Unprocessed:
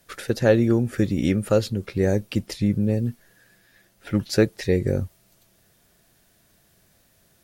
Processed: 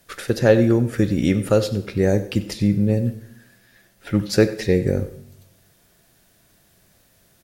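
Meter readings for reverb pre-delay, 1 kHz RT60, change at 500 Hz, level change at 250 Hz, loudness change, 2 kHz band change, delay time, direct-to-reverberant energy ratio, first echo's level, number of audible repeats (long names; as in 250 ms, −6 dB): 12 ms, 0.80 s, +3.0 dB, +3.0 dB, +3.0 dB, +3.0 dB, 94 ms, 11.0 dB, −17.0 dB, 1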